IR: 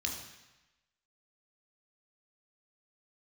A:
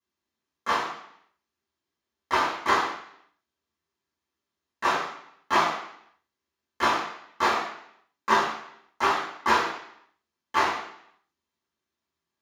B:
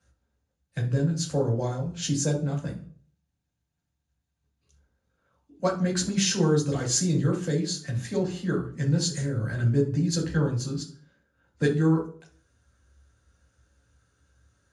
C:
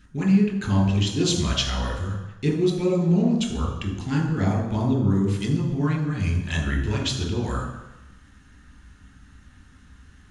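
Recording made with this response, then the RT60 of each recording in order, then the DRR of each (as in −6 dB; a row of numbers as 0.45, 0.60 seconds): C; 0.70, 0.50, 1.0 seconds; −10.0, −2.0, 0.5 decibels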